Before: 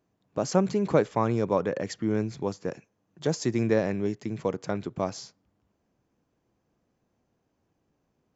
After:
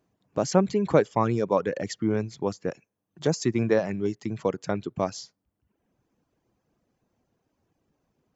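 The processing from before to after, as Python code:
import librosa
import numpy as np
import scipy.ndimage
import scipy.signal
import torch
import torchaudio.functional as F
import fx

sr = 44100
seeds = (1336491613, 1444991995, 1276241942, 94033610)

y = fx.dereverb_blind(x, sr, rt60_s=0.75)
y = y * 10.0 ** (2.5 / 20.0)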